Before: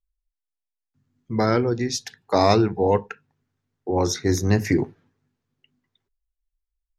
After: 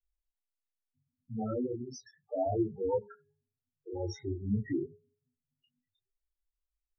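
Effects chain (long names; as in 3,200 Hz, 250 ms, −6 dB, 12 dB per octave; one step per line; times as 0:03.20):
spectral peaks only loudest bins 4
hum removal 415.3 Hz, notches 4
micro pitch shift up and down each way 21 cents
level −6 dB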